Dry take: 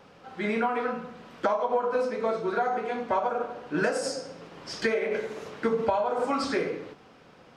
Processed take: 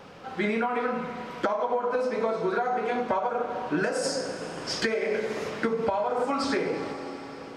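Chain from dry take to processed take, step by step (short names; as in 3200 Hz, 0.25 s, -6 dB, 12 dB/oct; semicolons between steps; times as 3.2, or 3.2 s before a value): reverb RT60 4.9 s, pre-delay 32 ms, DRR 13 dB; compressor, threshold -30 dBFS, peak gain reduction 10 dB; gain +6.5 dB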